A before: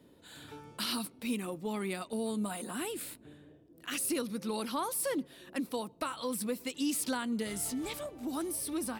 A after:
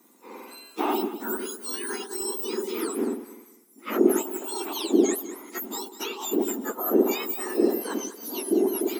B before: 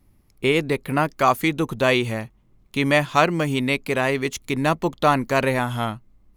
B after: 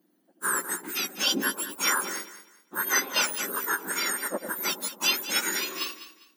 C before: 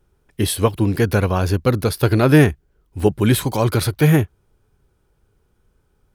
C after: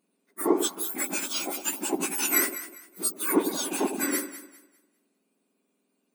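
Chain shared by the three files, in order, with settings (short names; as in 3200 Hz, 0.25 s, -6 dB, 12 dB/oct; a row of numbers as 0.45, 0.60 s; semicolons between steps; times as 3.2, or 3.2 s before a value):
spectrum mirrored in octaves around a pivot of 1900 Hz; echo with dull and thin repeats by turns 0.1 s, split 880 Hz, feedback 53%, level -8 dB; match loudness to -27 LUFS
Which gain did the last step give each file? +7.5, -2.5, -5.0 dB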